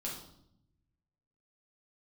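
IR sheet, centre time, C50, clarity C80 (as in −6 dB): 39 ms, 4.5 dB, 8.0 dB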